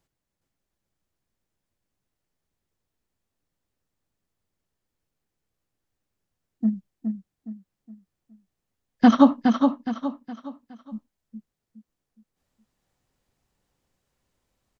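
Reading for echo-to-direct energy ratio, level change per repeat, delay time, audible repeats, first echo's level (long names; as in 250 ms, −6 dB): −5.0 dB, −8.5 dB, 416 ms, 4, −5.5 dB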